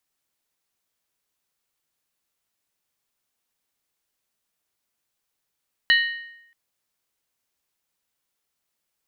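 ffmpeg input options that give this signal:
-f lavfi -i "aevalsrc='0.224*pow(10,-3*t/0.83)*sin(2*PI*1860*t)+0.126*pow(10,-3*t/0.657)*sin(2*PI*2964.8*t)+0.0708*pow(10,-3*t/0.568)*sin(2*PI*3973*t)+0.0398*pow(10,-3*t/0.548)*sin(2*PI*4270.6*t)':d=0.63:s=44100"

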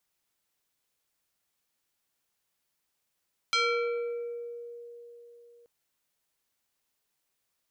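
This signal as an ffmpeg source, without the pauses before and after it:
-f lavfi -i "aevalsrc='0.0794*pow(10,-3*t/3.85)*sin(2*PI*474*t+2.5*pow(10,-3*t/1.45)*sin(2*PI*3.88*474*t))':d=2.13:s=44100"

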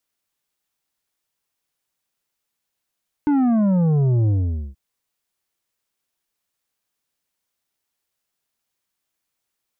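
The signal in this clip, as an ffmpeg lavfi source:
-f lavfi -i "aevalsrc='0.168*clip((1.48-t)/0.47,0,1)*tanh(2.51*sin(2*PI*300*1.48/log(65/300)*(exp(log(65/300)*t/1.48)-1)))/tanh(2.51)':d=1.48:s=44100"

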